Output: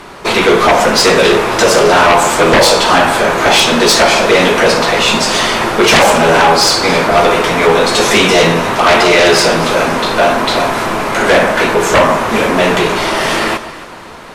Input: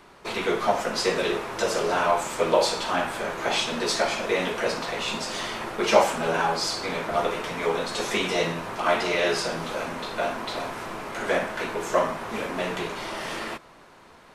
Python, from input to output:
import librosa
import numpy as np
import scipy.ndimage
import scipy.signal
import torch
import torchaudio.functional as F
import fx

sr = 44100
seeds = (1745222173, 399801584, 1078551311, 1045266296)

y = fx.echo_alternate(x, sr, ms=135, hz=1400.0, feedback_pct=60, wet_db=-12.0)
y = fx.fold_sine(y, sr, drive_db=15, ceiling_db=-3.5)